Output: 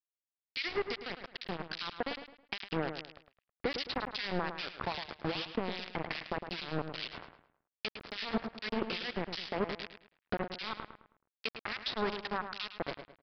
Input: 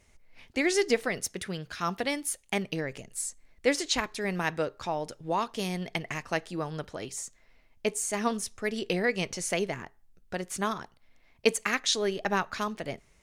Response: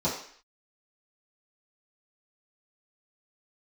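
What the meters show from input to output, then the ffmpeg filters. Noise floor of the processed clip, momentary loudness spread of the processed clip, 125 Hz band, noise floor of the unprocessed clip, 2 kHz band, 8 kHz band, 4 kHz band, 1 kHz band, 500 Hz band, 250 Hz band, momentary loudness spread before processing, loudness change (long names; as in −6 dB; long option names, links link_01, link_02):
below −85 dBFS, 8 LU, −6.5 dB, −63 dBFS, −6.5 dB, below −30 dB, −4.0 dB, −6.0 dB, −8.5 dB, −7.0 dB, 11 LU, −7.0 dB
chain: -filter_complex "[0:a]bandreject=frequency=630:width=15,bandreject=frequency=116.1:width_type=h:width=4,bandreject=frequency=232.2:width_type=h:width=4,dynaudnorm=framelen=860:gausssize=7:maxgain=9dB,alimiter=limit=-14.5dB:level=0:latency=1:release=68,acompressor=threshold=-38dB:ratio=5,aresample=16000,acrusher=bits=5:mix=0:aa=0.000001,aresample=44100,acrossover=split=1900[link_01][link_02];[link_01]aeval=exprs='val(0)*(1-1/2+1/2*cos(2*PI*2.5*n/s))':channel_layout=same[link_03];[link_02]aeval=exprs='val(0)*(1-1/2-1/2*cos(2*PI*2.5*n/s))':channel_layout=same[link_04];[link_03][link_04]amix=inputs=2:normalize=0,asplit=2[link_05][link_06];[link_06]adelay=107,lowpass=frequency=3200:poles=1,volume=-8.5dB,asplit=2[link_07][link_08];[link_08]adelay=107,lowpass=frequency=3200:poles=1,volume=0.35,asplit=2[link_09][link_10];[link_10]adelay=107,lowpass=frequency=3200:poles=1,volume=0.35,asplit=2[link_11][link_12];[link_12]adelay=107,lowpass=frequency=3200:poles=1,volume=0.35[link_13];[link_07][link_09][link_11][link_13]amix=inputs=4:normalize=0[link_14];[link_05][link_14]amix=inputs=2:normalize=0,aresample=11025,aresample=44100,volume=7.5dB"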